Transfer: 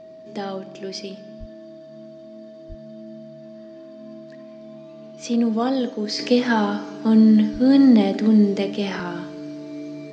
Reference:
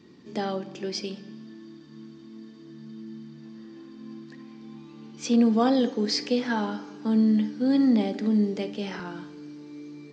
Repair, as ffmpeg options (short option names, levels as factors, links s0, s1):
-filter_complex "[0:a]bandreject=f=640:w=30,asplit=3[s0][s1][s2];[s0]afade=t=out:st=1.39:d=0.02[s3];[s1]highpass=f=140:w=0.5412,highpass=f=140:w=1.3066,afade=t=in:st=1.39:d=0.02,afade=t=out:st=1.51:d=0.02[s4];[s2]afade=t=in:st=1.51:d=0.02[s5];[s3][s4][s5]amix=inputs=3:normalize=0,asplit=3[s6][s7][s8];[s6]afade=t=out:st=2.68:d=0.02[s9];[s7]highpass=f=140:w=0.5412,highpass=f=140:w=1.3066,afade=t=in:st=2.68:d=0.02,afade=t=out:st=2.8:d=0.02[s10];[s8]afade=t=in:st=2.8:d=0.02[s11];[s9][s10][s11]amix=inputs=3:normalize=0,asplit=3[s12][s13][s14];[s12]afade=t=out:st=7.52:d=0.02[s15];[s13]highpass=f=140:w=0.5412,highpass=f=140:w=1.3066,afade=t=in:st=7.52:d=0.02,afade=t=out:st=7.64:d=0.02[s16];[s14]afade=t=in:st=7.64:d=0.02[s17];[s15][s16][s17]amix=inputs=3:normalize=0,asetnsamples=n=441:p=0,asendcmd='6.19 volume volume -7.5dB',volume=1"